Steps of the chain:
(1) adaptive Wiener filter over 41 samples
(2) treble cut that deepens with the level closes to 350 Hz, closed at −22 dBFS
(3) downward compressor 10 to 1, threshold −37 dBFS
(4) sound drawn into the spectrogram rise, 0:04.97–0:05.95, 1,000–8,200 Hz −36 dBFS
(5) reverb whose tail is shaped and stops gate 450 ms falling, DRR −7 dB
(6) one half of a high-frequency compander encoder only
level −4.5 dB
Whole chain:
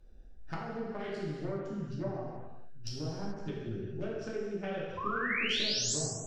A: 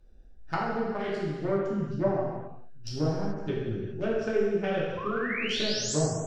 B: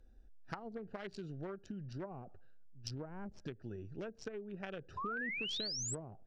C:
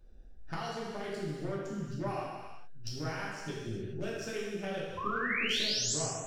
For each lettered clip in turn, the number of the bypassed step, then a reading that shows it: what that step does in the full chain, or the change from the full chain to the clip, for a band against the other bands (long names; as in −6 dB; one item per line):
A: 3, average gain reduction 5.0 dB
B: 5, change in momentary loudness spread −3 LU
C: 2, 1 kHz band +2.0 dB